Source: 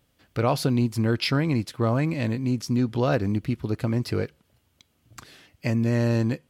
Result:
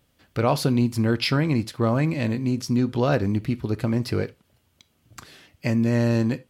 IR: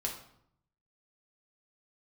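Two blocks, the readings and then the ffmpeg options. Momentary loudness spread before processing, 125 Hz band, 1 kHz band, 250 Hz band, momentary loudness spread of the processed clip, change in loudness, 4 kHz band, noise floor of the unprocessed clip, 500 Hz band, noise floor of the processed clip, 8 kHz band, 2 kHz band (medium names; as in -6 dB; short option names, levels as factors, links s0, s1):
6 LU, +1.0 dB, +1.5 dB, +2.0 dB, 6 LU, +1.5 dB, +1.5 dB, -69 dBFS, +1.5 dB, -67 dBFS, +1.5 dB, +1.5 dB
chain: -filter_complex "[0:a]asplit=2[s0][s1];[1:a]atrim=start_sample=2205,atrim=end_sample=3969[s2];[s1][s2]afir=irnorm=-1:irlink=0,volume=0.224[s3];[s0][s3]amix=inputs=2:normalize=0"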